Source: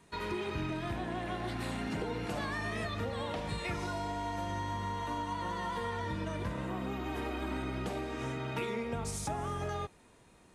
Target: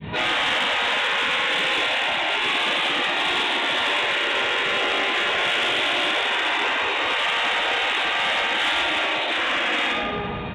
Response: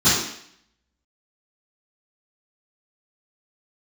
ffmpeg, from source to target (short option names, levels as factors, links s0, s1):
-filter_complex "[0:a]asoftclip=type=hard:threshold=0.0126,asettb=1/sr,asplit=3[s0][s1][s2];[s0]atrim=end=1.394[s3];[s1]atrim=start=1.39:end=3.5,asetpts=PTS-STARTPTS,afade=t=in:d=0.004:c=qsin,afade=t=out:st=2.106:d=0.004:c=qsin,equalizer=f=1500:w=0.85:g=-3.5[s4];[s2]atrim=start=3.496[s5];[s3][s4]acrossfade=d=0.004:c1=hsin:c2=qsin[s6];[s6][s5]acrossfade=d=0.004:c1=qsin:c2=hsin,aecho=1:1:97:0.0708[s7];[1:a]atrim=start_sample=2205,asetrate=25137,aresample=44100[s8];[s7][s8]afir=irnorm=-1:irlink=0,adynamicequalizer=threshold=0.0251:dfrequency=1000:dqfactor=1.4:tfrequency=1000:tqfactor=1.4:attack=5:release=100:ratio=0.375:range=4:mode=cutabove:tftype=bell,afftfilt=real='re*lt(hypot(re,im),0.224)':imag='im*lt(hypot(re,im),0.224)':win_size=1024:overlap=0.75,acontrast=48,aresample=8000,aresample=44100,asoftclip=type=tanh:threshold=0.188,highpass=f=79:p=1"